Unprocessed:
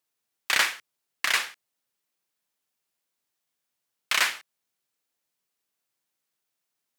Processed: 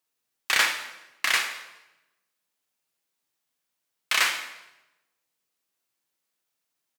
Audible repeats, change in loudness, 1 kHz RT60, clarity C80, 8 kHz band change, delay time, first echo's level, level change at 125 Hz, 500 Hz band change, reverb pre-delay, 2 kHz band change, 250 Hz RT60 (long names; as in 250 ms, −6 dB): 1, +0.5 dB, 0.95 s, 10.5 dB, +1.0 dB, 208 ms, −22.0 dB, can't be measured, +1.0 dB, 4 ms, +1.5 dB, 1.1 s